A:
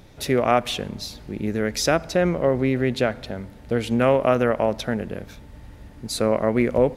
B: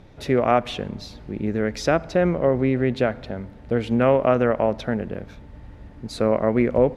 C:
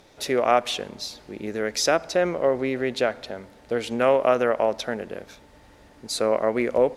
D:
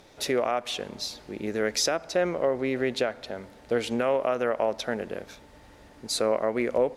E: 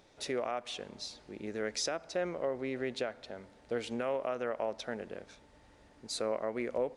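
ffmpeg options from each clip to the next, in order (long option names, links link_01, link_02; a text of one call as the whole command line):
ffmpeg -i in.wav -af "aemphasis=mode=reproduction:type=75fm" out.wav
ffmpeg -i in.wav -af "bass=frequency=250:gain=-15,treble=frequency=4000:gain=12" out.wav
ffmpeg -i in.wav -af "alimiter=limit=-14dB:level=0:latency=1:release=389" out.wav
ffmpeg -i in.wav -af "aresample=22050,aresample=44100,volume=-9dB" out.wav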